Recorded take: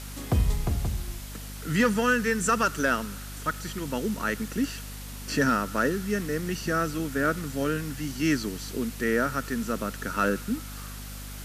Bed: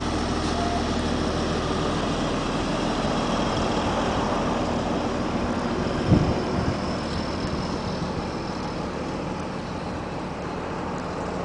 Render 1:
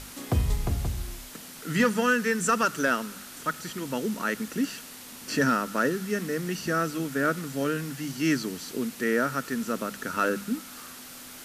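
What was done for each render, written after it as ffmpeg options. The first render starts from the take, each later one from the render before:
-af "bandreject=f=50:t=h:w=6,bandreject=f=100:t=h:w=6,bandreject=f=150:t=h:w=6,bandreject=f=200:t=h:w=6"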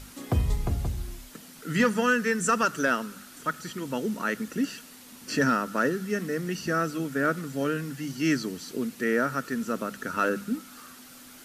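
-af "afftdn=nr=6:nf=-44"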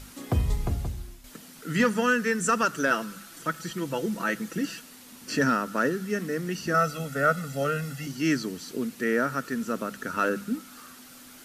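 -filter_complex "[0:a]asettb=1/sr,asplit=3[a][b][c];[a]atrim=end=2.904[d];[b]atrim=start=2.9:end=4.8,asetpts=PTS-STARTPTS,afade=t=in:d=0.004:c=qsin,afade=t=out:st=1.896:d=0.004:c=qsin,aecho=1:1:6:0.61,atrim=end_sample=83790[e];[c]atrim=start=4.796[f];[d][e]acrossfade=d=0.004:c1=hsin:c2=qsin[g];[g][f]acrossfade=d=0.004:c1=qsin:c2=hsin,asettb=1/sr,asplit=3[h][i][j];[h]atrim=end=6.744[k];[i]atrim=start=6.74:end=8.07,asetpts=PTS-STARTPTS,afade=t=in:d=0.004:c=qsin,afade=t=out:st=1.326:d=0.004:c=qsin,aecho=1:1:1.5:0.89,atrim=end_sample=58653[l];[j]atrim=start=8.066[m];[k][l]acrossfade=d=0.004:c1=hsin:c2=qsin[n];[n][m]acrossfade=d=0.004:c1=qsin:c2=hsin,asplit=2[o][p];[o]atrim=end=1.24,asetpts=PTS-STARTPTS,afade=t=out:st=0.69:d=0.55:silence=0.354813[q];[p]atrim=start=1.24,asetpts=PTS-STARTPTS,afade=t=in:d=0.004:c=hsin:silence=0.354813[r];[q][r]concat=n=2:v=0:a=1"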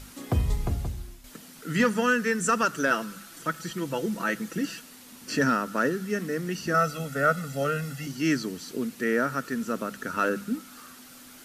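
-af anull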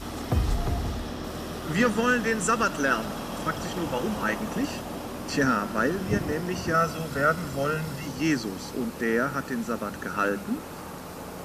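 -filter_complex "[1:a]volume=-10dB[a];[0:a][a]amix=inputs=2:normalize=0"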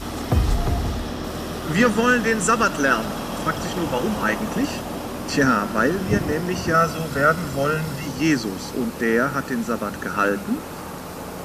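-af "volume=5.5dB"

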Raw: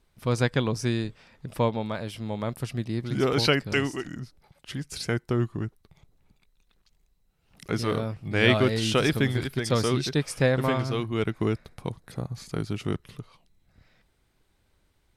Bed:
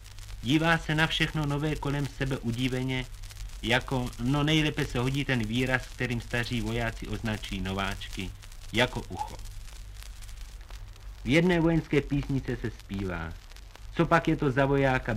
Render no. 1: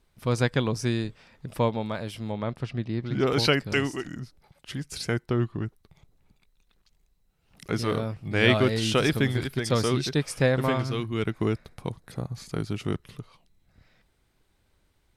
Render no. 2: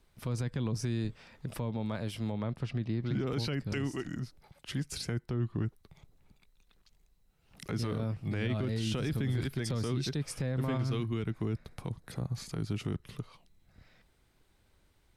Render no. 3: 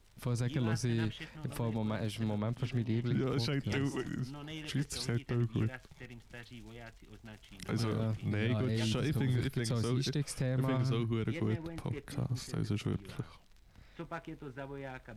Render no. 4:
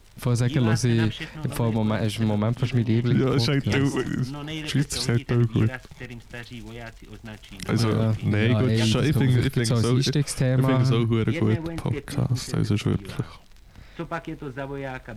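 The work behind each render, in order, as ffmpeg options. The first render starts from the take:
-filter_complex "[0:a]asettb=1/sr,asplit=3[a][b][c];[a]atrim=end=2.324[d];[b]atrim=start=2.32:end=3.27,asetpts=PTS-STARTPTS,afade=t=in:d=0.004:c=qsin,afade=t=out:st=0.946:d=0.004:c=qsin,lowpass=3.9k[e];[c]atrim=start=3.266[f];[d][e]acrossfade=d=0.004:c1=hsin:c2=qsin[g];[g][f]acrossfade=d=0.004:c1=qsin:c2=hsin,asettb=1/sr,asplit=3[h][i][j];[h]atrim=end=5.264[k];[i]atrim=start=5.26:end=5.66,asetpts=PTS-STARTPTS,afade=t=in:d=0.004:c=qsin,afade=t=out:st=0.396:d=0.004:c=qsin,highshelf=f=5.3k:t=q:w=1.5:g=-7[l];[j]atrim=start=5.656[m];[k][l]acrossfade=d=0.004:c1=hsin:c2=qsin[n];[n][m]acrossfade=d=0.004:c1=qsin:c2=hsin,asettb=1/sr,asplit=3[o][p][q];[o]atrim=end=10.824[r];[p]atrim=start=10.82:end=11.24,asetpts=PTS-STARTPTS,afade=t=in:d=0.004:c=qsin,afade=t=out:st=0.416:d=0.004:c=qsin,equalizer=f=690:w=1.2:g=-5.5[s];[q]atrim=start=11.236[t];[r][s]acrossfade=d=0.004:c1=hsin:c2=qsin[u];[u][t]acrossfade=d=0.004:c1=qsin:c2=hsin"
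-filter_complex "[0:a]acrossover=split=270[a][b];[b]acompressor=threshold=-40dB:ratio=2[c];[a][c]amix=inputs=2:normalize=0,alimiter=limit=-24dB:level=0:latency=1:release=28"
-filter_complex "[1:a]volume=-19.5dB[a];[0:a][a]amix=inputs=2:normalize=0"
-af "volume=11.5dB"

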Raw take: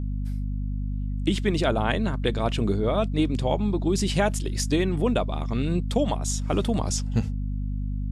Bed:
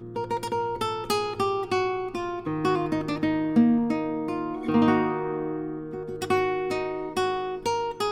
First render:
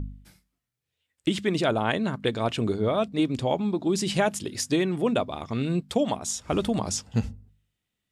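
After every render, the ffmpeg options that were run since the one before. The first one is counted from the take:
-af "bandreject=f=50:t=h:w=4,bandreject=f=100:t=h:w=4,bandreject=f=150:t=h:w=4,bandreject=f=200:t=h:w=4,bandreject=f=250:t=h:w=4"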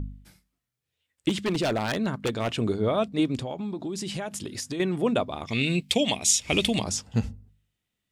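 -filter_complex "[0:a]asettb=1/sr,asplit=3[a][b][c];[a]atrim=end=1.294[d];[b]atrim=start=1.29:end=2.59,asetpts=PTS-STARTPTS,afade=t=in:d=0.004:c=qsin,afade=t=out:st=1.296:d=0.004:c=qsin,aeval=exprs='0.106*(abs(mod(val(0)/0.106+3,4)-2)-1)':c=same[e];[c]atrim=start=2.586[f];[d][e]acrossfade=d=0.004:c1=hsin:c2=qsin[g];[g][f]acrossfade=d=0.004:c1=qsin:c2=hsin,asettb=1/sr,asplit=3[h][i][j];[h]atrim=end=3.424[k];[i]atrim=start=3.42:end=4.8,asetpts=PTS-STARTPTS,afade=t=in:d=0.004:c=qsin,afade=t=out:st=1.376:d=0.004:c=qsin,acompressor=threshold=-29dB:ratio=6:attack=3.2:release=140:knee=1:detection=peak[l];[j]atrim=start=4.796[m];[k][l]acrossfade=d=0.004:c1=hsin:c2=qsin[n];[n][m]acrossfade=d=0.004:c1=qsin:c2=hsin,asettb=1/sr,asplit=3[o][p][q];[o]atrim=end=5.474[r];[p]atrim=start=5.47:end=6.84,asetpts=PTS-STARTPTS,afade=t=in:d=0.004:c=qsin,afade=t=out:st=1.366:d=0.004:c=qsin,highshelf=f=1.8k:t=q:w=3:g=9[s];[q]atrim=start=6.836[t];[r][s]acrossfade=d=0.004:c1=hsin:c2=qsin[u];[u][t]acrossfade=d=0.004:c1=qsin:c2=hsin"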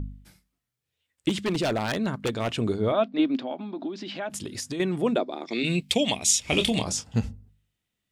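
-filter_complex "[0:a]asettb=1/sr,asplit=3[a][b][c];[a]atrim=end=2.924[d];[b]atrim=start=2.92:end=4.3,asetpts=PTS-STARTPTS,afade=t=in:d=0.004:c=qsin,afade=t=out:st=1.376:d=0.004:c=qsin,highpass=f=240:w=0.5412,highpass=f=240:w=1.3066,equalizer=f=260:t=q:w=4:g=8,equalizer=f=440:t=q:w=4:g=-6,equalizer=f=660:t=q:w=4:g=4,equalizer=f=1.5k:t=q:w=4:g=4,lowpass=f=4.3k:w=0.5412,lowpass=f=4.3k:w=1.3066[e];[c]atrim=start=4.296[f];[d][e]acrossfade=d=0.004:c1=hsin:c2=qsin[g];[g][f]acrossfade=d=0.004:c1=qsin:c2=hsin,asplit=3[h][i][j];[h]afade=t=out:st=5.15:d=0.02[k];[i]highpass=f=240:w=0.5412,highpass=f=240:w=1.3066,equalizer=f=340:t=q:w=4:g=10,equalizer=f=1.1k:t=q:w=4:g=-7,equalizer=f=2.9k:t=q:w=4:g=-10,equalizer=f=4.3k:t=q:w=4:g=4,equalizer=f=6.5k:t=q:w=4:g=-6,lowpass=f=7.3k:w=0.5412,lowpass=f=7.3k:w=1.3066,afade=t=in:st=5.15:d=0.02,afade=t=out:st=5.63:d=0.02[l];[j]afade=t=in:st=5.63:d=0.02[m];[k][l][m]amix=inputs=3:normalize=0,asettb=1/sr,asplit=3[n][o][p];[n]atrim=end=6.464[q];[o]atrim=start=6.46:end=7.18,asetpts=PTS-STARTPTS,afade=t=in:d=0.004:c=qsin,afade=t=out:st=0.716:d=0.004:c=qsin,asplit=2[r][s];[s]adelay=27,volume=-8.5dB[t];[r][t]amix=inputs=2:normalize=0,atrim=end_sample=31752[u];[p]atrim=start=7.176[v];[q][u]acrossfade=d=0.004:c1=hsin:c2=qsin[w];[w][v]acrossfade=d=0.004:c1=qsin:c2=hsin"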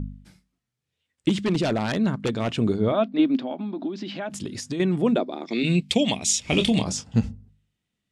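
-af "lowpass=8.7k,equalizer=f=190:t=o:w=1.5:g=6"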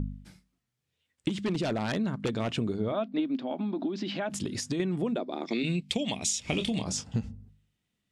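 -af "acompressor=threshold=-26dB:ratio=10"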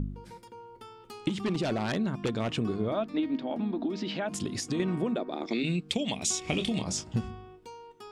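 -filter_complex "[1:a]volume=-20dB[a];[0:a][a]amix=inputs=2:normalize=0"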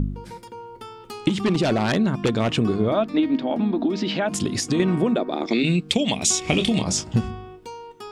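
-af "volume=9dB"

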